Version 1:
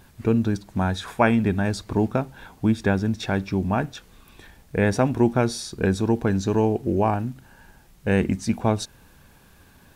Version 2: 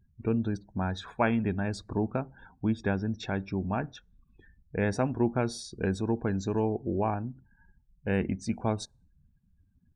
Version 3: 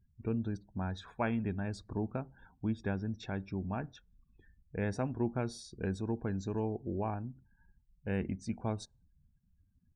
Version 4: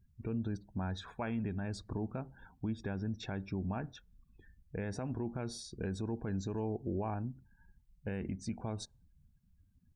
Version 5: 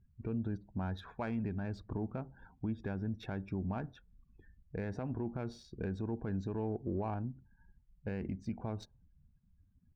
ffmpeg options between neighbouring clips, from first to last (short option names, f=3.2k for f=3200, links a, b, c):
-af "afftdn=nr=34:nf=-42,volume=-7.5dB"
-af "lowshelf=f=180:g=4.5,volume=-8dB"
-af "alimiter=level_in=6.5dB:limit=-24dB:level=0:latency=1:release=81,volume=-6.5dB,volume=2.5dB"
-af "adynamicsmooth=sensitivity=7:basefreq=2.5k"